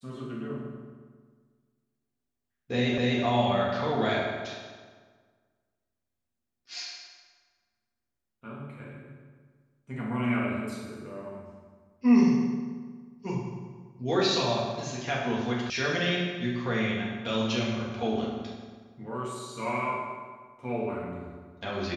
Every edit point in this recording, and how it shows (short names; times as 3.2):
2.98 repeat of the last 0.25 s
15.7 sound cut off